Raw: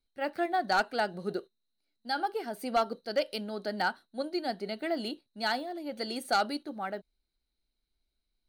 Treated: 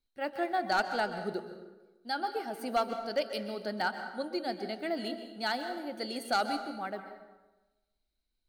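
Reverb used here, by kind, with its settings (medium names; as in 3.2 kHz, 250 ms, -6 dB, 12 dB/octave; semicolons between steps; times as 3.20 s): plate-style reverb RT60 1.1 s, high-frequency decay 0.65×, pre-delay 115 ms, DRR 8 dB; trim -2 dB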